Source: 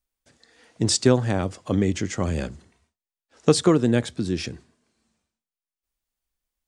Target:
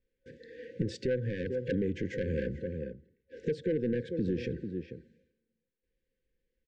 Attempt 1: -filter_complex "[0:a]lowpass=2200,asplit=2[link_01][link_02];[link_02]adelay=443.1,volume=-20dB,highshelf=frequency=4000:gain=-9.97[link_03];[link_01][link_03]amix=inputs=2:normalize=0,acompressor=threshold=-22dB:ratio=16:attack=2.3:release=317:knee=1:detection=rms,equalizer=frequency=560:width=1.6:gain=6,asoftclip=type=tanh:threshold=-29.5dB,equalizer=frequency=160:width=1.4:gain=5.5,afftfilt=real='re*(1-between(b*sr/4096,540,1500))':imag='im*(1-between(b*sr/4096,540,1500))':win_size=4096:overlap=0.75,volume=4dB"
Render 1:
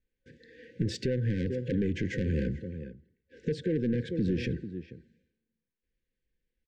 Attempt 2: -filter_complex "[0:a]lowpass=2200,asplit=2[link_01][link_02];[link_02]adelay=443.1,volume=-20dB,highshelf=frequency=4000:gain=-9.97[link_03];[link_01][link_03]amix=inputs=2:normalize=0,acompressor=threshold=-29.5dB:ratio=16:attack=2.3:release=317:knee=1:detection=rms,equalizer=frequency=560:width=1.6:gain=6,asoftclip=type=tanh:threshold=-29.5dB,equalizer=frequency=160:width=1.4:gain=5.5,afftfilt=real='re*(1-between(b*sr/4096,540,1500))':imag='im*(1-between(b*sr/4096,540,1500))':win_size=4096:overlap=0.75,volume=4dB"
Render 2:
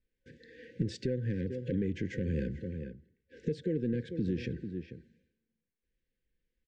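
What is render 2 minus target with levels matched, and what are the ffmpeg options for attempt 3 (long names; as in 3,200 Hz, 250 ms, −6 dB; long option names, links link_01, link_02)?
500 Hz band −3.5 dB
-filter_complex "[0:a]lowpass=2200,asplit=2[link_01][link_02];[link_02]adelay=443.1,volume=-20dB,highshelf=frequency=4000:gain=-9.97[link_03];[link_01][link_03]amix=inputs=2:normalize=0,acompressor=threshold=-29.5dB:ratio=16:attack=2.3:release=317:knee=1:detection=rms,equalizer=frequency=560:width=1.6:gain=16.5,asoftclip=type=tanh:threshold=-29.5dB,equalizer=frequency=160:width=1.4:gain=5.5,afftfilt=real='re*(1-between(b*sr/4096,540,1500))':imag='im*(1-between(b*sr/4096,540,1500))':win_size=4096:overlap=0.75,volume=4dB"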